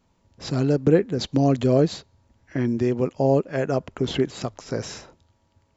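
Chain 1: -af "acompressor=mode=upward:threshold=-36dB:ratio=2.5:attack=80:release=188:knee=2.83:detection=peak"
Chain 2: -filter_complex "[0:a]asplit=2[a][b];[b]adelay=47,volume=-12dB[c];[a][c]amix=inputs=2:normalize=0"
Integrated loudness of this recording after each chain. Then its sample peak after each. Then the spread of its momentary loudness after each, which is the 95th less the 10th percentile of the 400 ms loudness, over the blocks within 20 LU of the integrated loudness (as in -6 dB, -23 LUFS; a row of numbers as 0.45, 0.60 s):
-23.0, -23.0 LUFS; -5.0, -4.0 dBFS; 13, 14 LU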